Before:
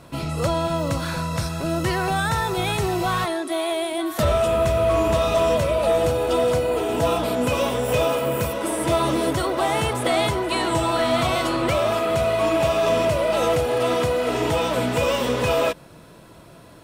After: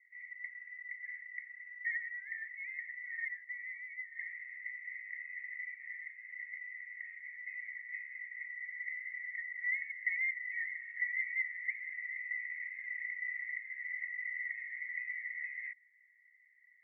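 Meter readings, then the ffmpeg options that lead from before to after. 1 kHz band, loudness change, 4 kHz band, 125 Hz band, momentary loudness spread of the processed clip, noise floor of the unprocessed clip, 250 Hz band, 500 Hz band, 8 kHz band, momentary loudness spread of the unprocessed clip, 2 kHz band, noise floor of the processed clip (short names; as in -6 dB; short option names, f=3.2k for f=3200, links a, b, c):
under -40 dB, -18.0 dB, under -40 dB, under -40 dB, 10 LU, -46 dBFS, under -40 dB, under -40 dB, under -40 dB, 5 LU, -6.0 dB, -66 dBFS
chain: -af "asuperpass=centerf=2000:order=8:qfactor=6.6,volume=1dB"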